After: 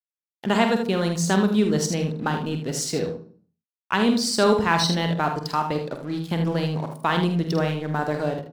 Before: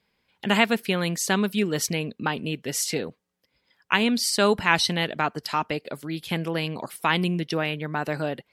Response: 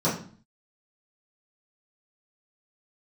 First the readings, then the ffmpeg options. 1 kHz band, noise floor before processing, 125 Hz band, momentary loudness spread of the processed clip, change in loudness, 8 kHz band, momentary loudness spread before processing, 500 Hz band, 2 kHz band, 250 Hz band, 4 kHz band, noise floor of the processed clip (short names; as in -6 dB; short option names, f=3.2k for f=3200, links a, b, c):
+2.5 dB, -75 dBFS, +5.0 dB, 8 LU, +1.5 dB, -1.0 dB, 9 LU, +3.5 dB, -3.0 dB, +4.0 dB, -1.5 dB, under -85 dBFS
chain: -filter_complex "[0:a]lowpass=7.3k,equalizer=f=2.4k:w=1.5:g=-10.5,acontrast=36,aeval=exprs='sgn(val(0))*max(abs(val(0))-0.0106,0)':c=same,aecho=1:1:47|78:0.398|0.376,asplit=2[a][b];[1:a]atrim=start_sample=2205,asetrate=42777,aresample=44100,adelay=74[c];[b][c]afir=irnorm=-1:irlink=0,volume=-29dB[d];[a][d]amix=inputs=2:normalize=0,volume=-2.5dB"